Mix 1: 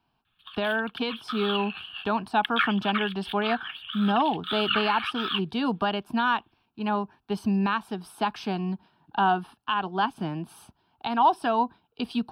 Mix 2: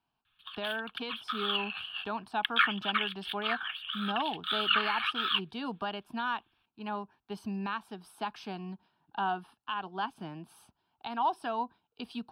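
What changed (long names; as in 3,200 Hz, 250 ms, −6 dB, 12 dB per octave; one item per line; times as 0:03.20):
speech −8.0 dB
master: add low-shelf EQ 430 Hz −4.5 dB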